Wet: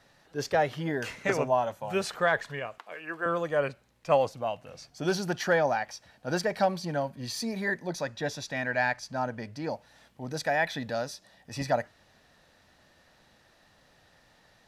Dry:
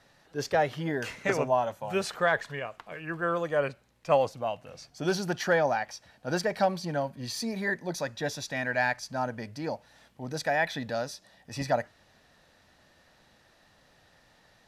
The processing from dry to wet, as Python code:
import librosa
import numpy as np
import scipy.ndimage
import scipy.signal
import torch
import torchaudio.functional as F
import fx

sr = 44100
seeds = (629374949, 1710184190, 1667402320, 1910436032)

y = fx.highpass(x, sr, hz=360.0, slope=12, at=(2.78, 3.26))
y = fx.high_shelf(y, sr, hz=9100.0, db=-8.0, at=(7.87, 9.69))